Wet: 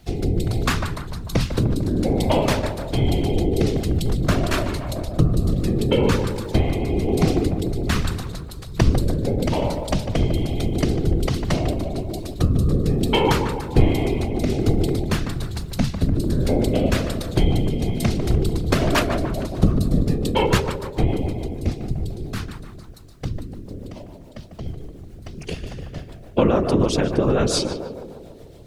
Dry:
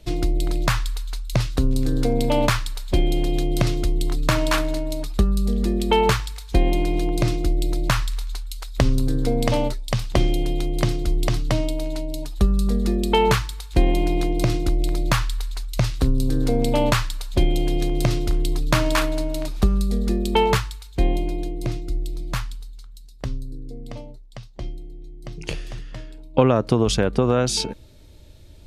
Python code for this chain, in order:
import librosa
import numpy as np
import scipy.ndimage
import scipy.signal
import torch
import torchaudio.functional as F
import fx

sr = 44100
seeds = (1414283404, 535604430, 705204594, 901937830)

y = fx.dmg_noise_colour(x, sr, seeds[0], colour='pink', level_db=-59.0)
y = fx.rotary_switch(y, sr, hz=1.2, then_hz=7.0, switch_at_s=17.8)
y = fx.echo_tape(y, sr, ms=149, feedback_pct=73, wet_db=-4.5, lp_hz=1400.0, drive_db=8.0, wow_cents=11)
y = fx.whisperise(y, sr, seeds[1])
y = y * 10.0 ** (1.5 / 20.0)